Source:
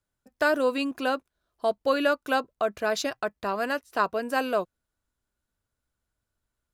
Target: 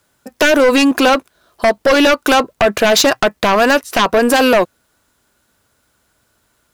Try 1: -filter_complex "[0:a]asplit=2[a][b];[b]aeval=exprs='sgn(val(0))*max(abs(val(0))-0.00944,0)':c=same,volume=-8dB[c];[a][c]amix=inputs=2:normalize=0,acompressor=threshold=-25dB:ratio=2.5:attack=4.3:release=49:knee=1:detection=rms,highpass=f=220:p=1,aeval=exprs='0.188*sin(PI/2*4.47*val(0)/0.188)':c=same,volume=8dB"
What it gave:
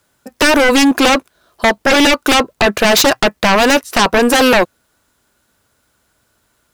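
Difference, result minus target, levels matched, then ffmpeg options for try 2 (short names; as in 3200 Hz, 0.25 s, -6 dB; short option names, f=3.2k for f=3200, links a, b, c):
compressor: peak gain reduction -4 dB
-filter_complex "[0:a]asplit=2[a][b];[b]aeval=exprs='sgn(val(0))*max(abs(val(0))-0.00944,0)':c=same,volume=-8dB[c];[a][c]amix=inputs=2:normalize=0,acompressor=threshold=-31.5dB:ratio=2.5:attack=4.3:release=49:knee=1:detection=rms,highpass=f=220:p=1,aeval=exprs='0.188*sin(PI/2*4.47*val(0)/0.188)':c=same,volume=8dB"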